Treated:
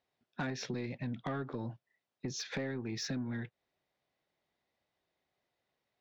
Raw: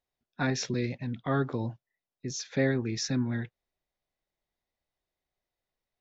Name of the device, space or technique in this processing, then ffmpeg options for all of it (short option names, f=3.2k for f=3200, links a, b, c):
AM radio: -af "highpass=110,lowpass=4.4k,acompressor=threshold=-40dB:ratio=6,asoftclip=type=tanh:threshold=-35dB,volume=6.5dB"